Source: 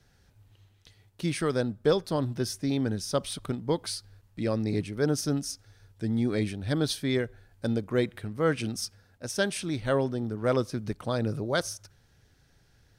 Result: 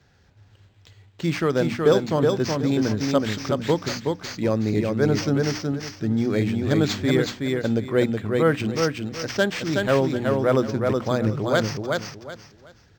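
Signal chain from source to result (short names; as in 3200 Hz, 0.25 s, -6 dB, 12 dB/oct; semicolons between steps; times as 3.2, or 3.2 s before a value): HPF 59 Hz; notches 60/120/180/240/300 Hz; on a send: feedback echo 0.372 s, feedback 25%, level -3.5 dB; on the sum: decimation joined by straight lines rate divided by 4×; gain +6 dB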